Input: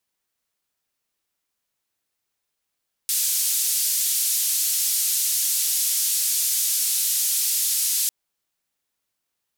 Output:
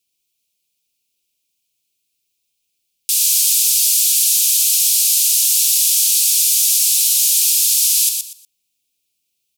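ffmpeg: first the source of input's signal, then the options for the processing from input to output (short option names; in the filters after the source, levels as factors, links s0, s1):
-f lavfi -i "anoisesrc=c=white:d=5:r=44100:seed=1,highpass=f=5100,lowpass=f=14000,volume=-13.5dB"
-af "firequalizer=gain_entry='entry(350,0);entry(1600,-28);entry(2400,7)':delay=0.05:min_phase=1,aecho=1:1:120|240|360:0.531|0.122|0.0281"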